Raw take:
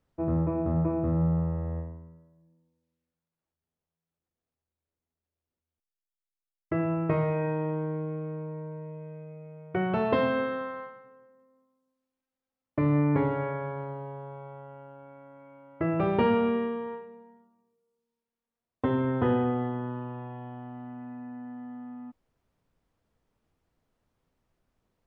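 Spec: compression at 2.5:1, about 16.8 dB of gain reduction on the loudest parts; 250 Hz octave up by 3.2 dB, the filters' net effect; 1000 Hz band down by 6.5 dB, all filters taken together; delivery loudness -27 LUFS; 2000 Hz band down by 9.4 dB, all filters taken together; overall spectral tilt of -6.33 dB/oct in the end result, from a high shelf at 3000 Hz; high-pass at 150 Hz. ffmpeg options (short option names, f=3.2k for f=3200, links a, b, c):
-af "highpass=150,equalizer=f=250:t=o:g=5.5,equalizer=f=1k:t=o:g=-6,equalizer=f=2k:t=o:g=-8.5,highshelf=f=3k:g=-5.5,acompressor=threshold=-46dB:ratio=2.5,volume=16.5dB"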